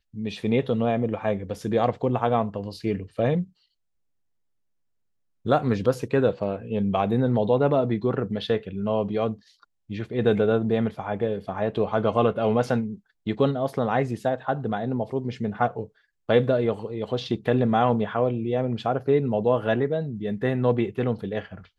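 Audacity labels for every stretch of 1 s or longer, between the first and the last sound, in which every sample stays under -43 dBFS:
3.450000	5.450000	silence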